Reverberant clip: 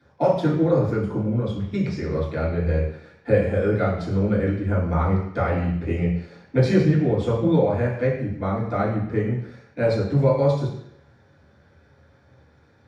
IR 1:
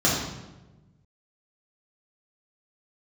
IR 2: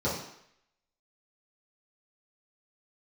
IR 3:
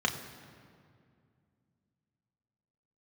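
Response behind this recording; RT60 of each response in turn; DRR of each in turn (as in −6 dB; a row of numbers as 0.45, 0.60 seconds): 2; 1.1, 0.70, 2.3 seconds; −6.5, −10.0, 2.0 decibels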